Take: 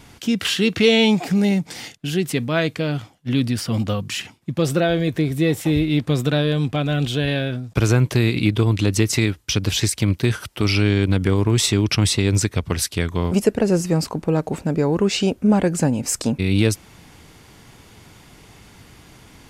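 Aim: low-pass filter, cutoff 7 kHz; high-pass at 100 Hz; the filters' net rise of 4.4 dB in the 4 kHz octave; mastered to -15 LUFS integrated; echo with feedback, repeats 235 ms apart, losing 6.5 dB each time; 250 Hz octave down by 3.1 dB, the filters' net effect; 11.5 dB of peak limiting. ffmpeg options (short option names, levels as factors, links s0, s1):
-af "highpass=100,lowpass=7000,equalizer=f=250:t=o:g=-4,equalizer=f=4000:t=o:g=6,alimiter=limit=0.237:level=0:latency=1,aecho=1:1:235|470|705|940|1175|1410:0.473|0.222|0.105|0.0491|0.0231|0.0109,volume=2.37"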